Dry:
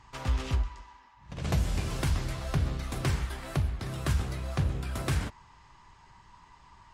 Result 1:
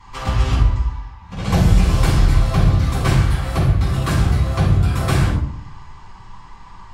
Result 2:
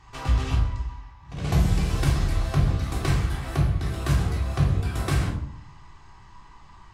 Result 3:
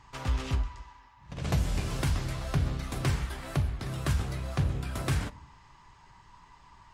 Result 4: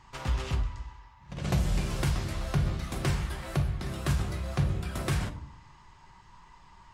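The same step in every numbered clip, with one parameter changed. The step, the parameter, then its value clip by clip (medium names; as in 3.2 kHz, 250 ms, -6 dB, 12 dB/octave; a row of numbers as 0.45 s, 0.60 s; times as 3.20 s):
simulated room, microphone at: 11 m, 3.5 m, 0.31 m, 0.96 m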